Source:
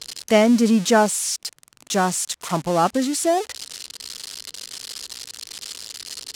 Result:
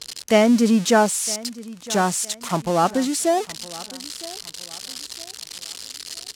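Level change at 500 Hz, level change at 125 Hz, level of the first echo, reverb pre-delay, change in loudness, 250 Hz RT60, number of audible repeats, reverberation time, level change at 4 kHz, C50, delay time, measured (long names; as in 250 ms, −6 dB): 0.0 dB, 0.0 dB, −19.0 dB, no reverb audible, −0.5 dB, no reverb audible, 2, no reverb audible, 0.0 dB, no reverb audible, 961 ms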